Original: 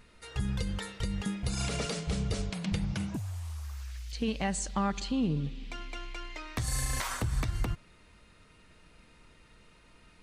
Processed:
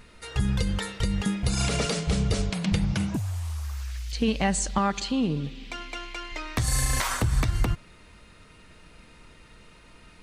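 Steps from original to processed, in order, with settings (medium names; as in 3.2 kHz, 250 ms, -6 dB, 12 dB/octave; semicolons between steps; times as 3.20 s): 4.78–6.32 s: bass shelf 180 Hz -9 dB; trim +7 dB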